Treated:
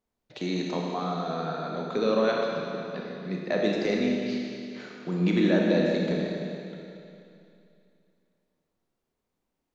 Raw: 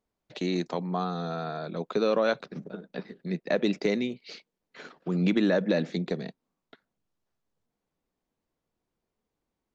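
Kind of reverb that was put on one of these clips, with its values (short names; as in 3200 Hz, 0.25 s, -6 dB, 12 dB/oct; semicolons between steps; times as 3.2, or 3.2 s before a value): Schroeder reverb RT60 2.7 s, combs from 25 ms, DRR -1.5 dB; gain -2 dB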